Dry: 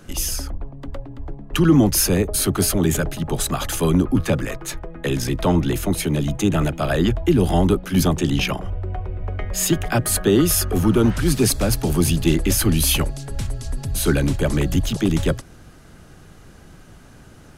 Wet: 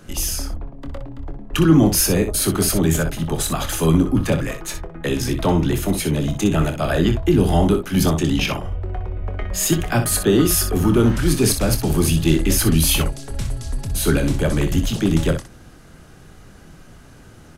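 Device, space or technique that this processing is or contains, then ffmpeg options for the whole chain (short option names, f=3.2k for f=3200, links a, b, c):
slapback doubling: -filter_complex "[0:a]asplit=3[a][b][c];[b]adelay=25,volume=-9dB[d];[c]adelay=62,volume=-9dB[e];[a][d][e]amix=inputs=3:normalize=0"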